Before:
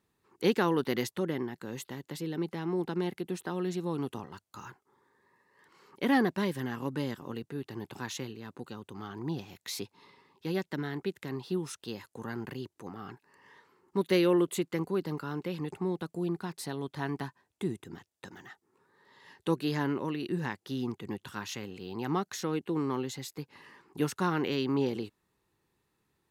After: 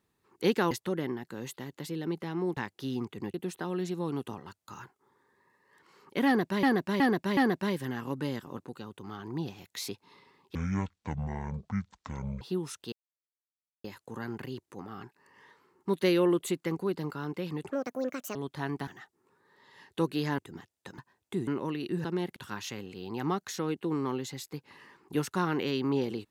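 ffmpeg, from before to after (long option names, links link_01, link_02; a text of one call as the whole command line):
ffmpeg -i in.wav -filter_complex "[0:a]asplit=19[link_01][link_02][link_03][link_04][link_05][link_06][link_07][link_08][link_09][link_10][link_11][link_12][link_13][link_14][link_15][link_16][link_17][link_18][link_19];[link_01]atrim=end=0.712[link_20];[link_02]atrim=start=1.018:end=2.882[link_21];[link_03]atrim=start=20.438:end=21.212[link_22];[link_04]atrim=start=3.198:end=6.492[link_23];[link_05]atrim=start=6.118:end=6.492[link_24];[link_06]atrim=start=6.118:end=6.492[link_25];[link_07]atrim=start=6.118:end=7.332[link_26];[link_08]atrim=start=8.488:end=10.464[link_27];[link_09]atrim=start=10.46:end=11.41,asetpts=PTS-STARTPTS,asetrate=22491,aresample=44100,atrim=end_sample=82147,asetpts=PTS-STARTPTS[link_28];[link_10]atrim=start=11.406:end=11.92,asetpts=PTS-STARTPTS,afade=type=out:start_time=0.51:duration=0.004:curve=hsin,apad=pad_dur=0.92[link_29];[link_11]atrim=start=11.92:end=15.794,asetpts=PTS-STARTPTS,afade=type=in:duration=0.004:curve=hsin[link_30];[link_12]atrim=start=15.79:end=16.75,asetpts=PTS-STARTPTS,asetrate=66150,aresample=44100[link_31];[link_13]atrim=start=16.746:end=17.272[link_32];[link_14]atrim=start=18.358:end=19.872[link_33];[link_15]atrim=start=17.758:end=18.362[link_34];[link_16]atrim=start=17.268:end=17.762[link_35];[link_17]atrim=start=19.868:end=20.442[link_36];[link_18]atrim=start=2.878:end=3.202[link_37];[link_19]atrim=start=21.208[link_38];[link_20][link_21]acrossfade=duration=0.004:curve1=hsin:curve2=hsin[link_39];[link_39][link_22]acrossfade=duration=0.004:curve1=hsin:curve2=hsin[link_40];[link_40][link_23]acrossfade=duration=0.004:curve1=hsin:curve2=hsin[link_41];[link_41][link_24]acrossfade=duration=0.004:curve1=hsin:curve2=hsin[link_42];[link_42][link_25]acrossfade=duration=0.004:curve1=hsin:curve2=hsin[link_43];[link_43][link_26]acrossfade=duration=0.004:curve1=hsin:curve2=hsin[link_44];[link_44][link_27]acrossfade=duration=0.004:curve1=hsin:curve2=hsin[link_45];[link_45][link_28]acrossfade=duration=0.004:curve1=hsin:curve2=hsin[link_46];[link_29][link_30]concat=n=2:v=0:a=1[link_47];[link_46][link_47]acrossfade=duration=0.004:curve1=hsin:curve2=hsin[link_48];[link_48][link_31]acrossfade=duration=0.004:curve1=hsin:curve2=hsin[link_49];[link_49][link_32]acrossfade=duration=0.004:curve1=hsin:curve2=hsin[link_50];[link_50][link_33]acrossfade=duration=0.004:curve1=hsin:curve2=hsin[link_51];[link_51][link_34]acrossfade=duration=0.004:curve1=hsin:curve2=hsin[link_52];[link_52][link_35]acrossfade=duration=0.004:curve1=hsin:curve2=hsin[link_53];[link_53][link_36]acrossfade=duration=0.004:curve1=hsin:curve2=hsin[link_54];[link_54][link_37]acrossfade=duration=0.004:curve1=hsin:curve2=hsin[link_55];[link_55][link_38]acrossfade=duration=0.004:curve1=hsin:curve2=hsin" out.wav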